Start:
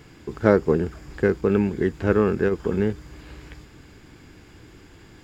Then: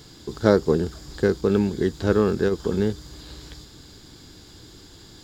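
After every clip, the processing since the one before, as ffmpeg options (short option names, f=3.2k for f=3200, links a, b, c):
-af "highshelf=f=3.1k:t=q:w=3:g=7.5"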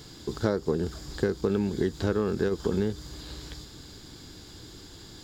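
-af "acompressor=threshold=-22dB:ratio=6"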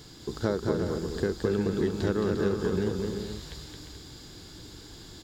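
-af "aecho=1:1:220|352|431.2|478.7|507.2:0.631|0.398|0.251|0.158|0.1,volume=-2dB"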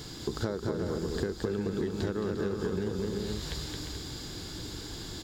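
-af "acompressor=threshold=-35dB:ratio=5,volume=6dB"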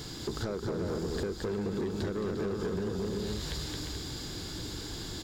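-af "asoftclip=type=tanh:threshold=-28dB,volume=1.5dB"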